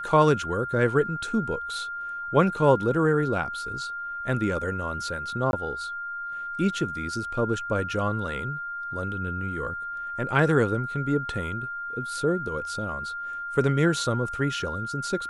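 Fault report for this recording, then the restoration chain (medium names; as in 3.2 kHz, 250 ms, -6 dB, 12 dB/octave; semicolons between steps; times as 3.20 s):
whine 1.4 kHz -31 dBFS
5.51–5.53 s: dropout 21 ms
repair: band-stop 1.4 kHz, Q 30; interpolate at 5.51 s, 21 ms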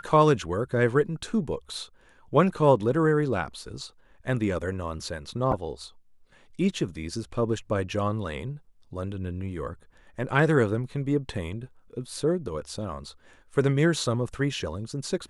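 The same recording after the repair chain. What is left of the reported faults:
nothing left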